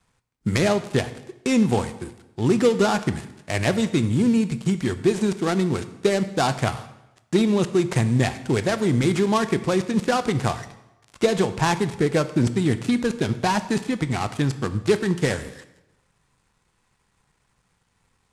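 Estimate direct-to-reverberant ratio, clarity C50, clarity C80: 11.5 dB, 13.5 dB, 15.5 dB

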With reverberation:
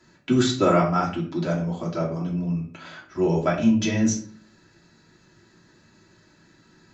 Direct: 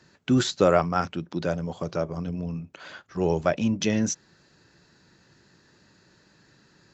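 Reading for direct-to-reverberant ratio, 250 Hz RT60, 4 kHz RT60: -5.0 dB, 0.70 s, 0.30 s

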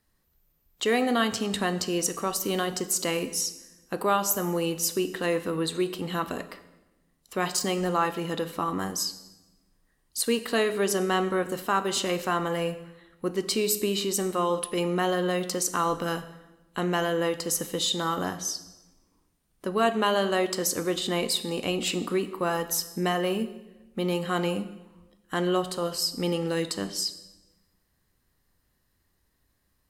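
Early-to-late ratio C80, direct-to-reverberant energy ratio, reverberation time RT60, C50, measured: 15.5 dB, 12.0 dB, 1.1 s, 14.0 dB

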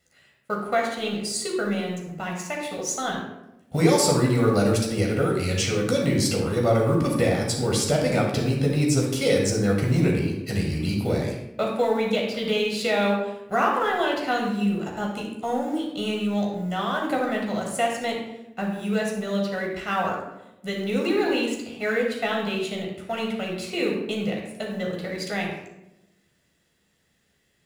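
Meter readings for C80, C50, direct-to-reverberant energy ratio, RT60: 6.0 dB, 3.0 dB, -1.0 dB, 0.90 s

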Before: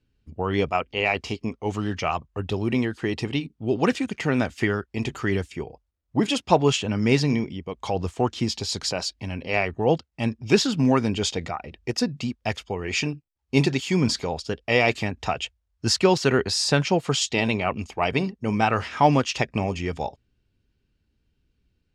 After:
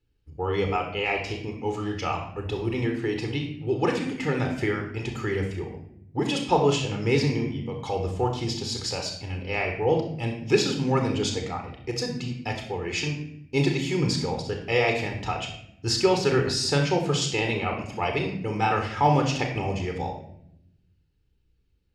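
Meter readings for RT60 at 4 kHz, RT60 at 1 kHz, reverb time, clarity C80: 0.55 s, 0.60 s, 0.75 s, 9.0 dB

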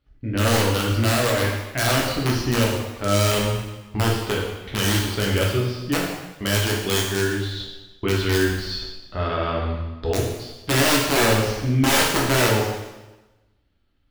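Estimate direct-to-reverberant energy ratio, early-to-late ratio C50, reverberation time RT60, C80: -3.0 dB, 2.0 dB, 1.1 s, 4.5 dB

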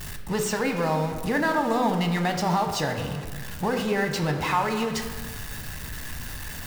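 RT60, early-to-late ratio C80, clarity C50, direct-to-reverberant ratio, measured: 1.5 s, 8.0 dB, 6.5 dB, 4.0 dB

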